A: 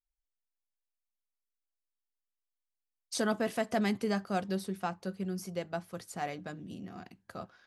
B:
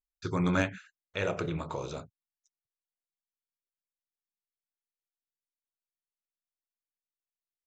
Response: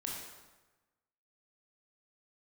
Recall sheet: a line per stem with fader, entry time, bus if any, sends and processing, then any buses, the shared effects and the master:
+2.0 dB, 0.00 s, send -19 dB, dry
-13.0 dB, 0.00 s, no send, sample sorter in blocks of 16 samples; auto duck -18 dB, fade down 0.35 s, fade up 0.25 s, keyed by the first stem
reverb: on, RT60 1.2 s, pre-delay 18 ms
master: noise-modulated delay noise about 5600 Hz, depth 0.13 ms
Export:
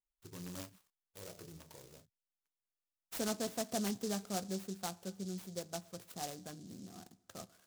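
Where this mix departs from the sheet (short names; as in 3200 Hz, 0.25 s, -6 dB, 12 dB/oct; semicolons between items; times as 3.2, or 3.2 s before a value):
stem A +2.0 dB -> -7.0 dB; stem B -13.0 dB -> -19.0 dB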